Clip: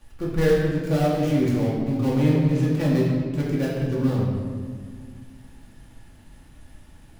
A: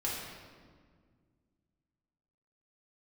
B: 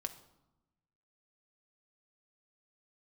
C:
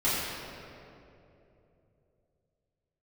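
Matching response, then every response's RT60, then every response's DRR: A; 1.8, 0.95, 3.0 seconds; −6.0, 5.5, −11.5 decibels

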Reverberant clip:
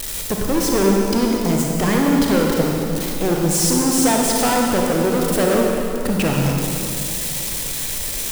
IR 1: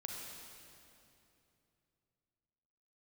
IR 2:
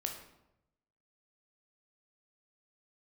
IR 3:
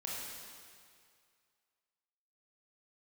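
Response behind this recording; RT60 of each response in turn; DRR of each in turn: 1; 2.8, 0.85, 2.2 seconds; −1.0, 2.0, −5.0 decibels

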